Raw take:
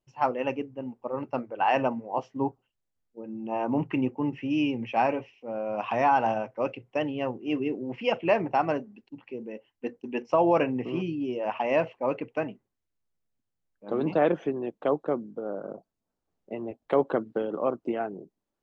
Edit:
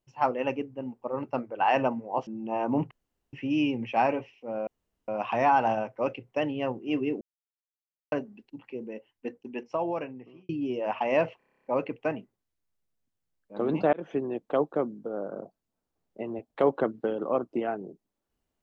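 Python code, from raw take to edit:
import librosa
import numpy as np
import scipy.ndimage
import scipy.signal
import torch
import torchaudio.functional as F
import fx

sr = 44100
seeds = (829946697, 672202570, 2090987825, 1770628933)

y = fx.edit(x, sr, fx.cut(start_s=2.27, length_s=1.0),
    fx.room_tone_fill(start_s=3.91, length_s=0.42),
    fx.insert_room_tone(at_s=5.67, length_s=0.41),
    fx.silence(start_s=7.8, length_s=0.91),
    fx.fade_out_span(start_s=9.47, length_s=1.61),
    fx.stutter(start_s=11.97, slice_s=0.03, count=10),
    fx.fade_in_span(start_s=14.25, length_s=0.25), tone=tone)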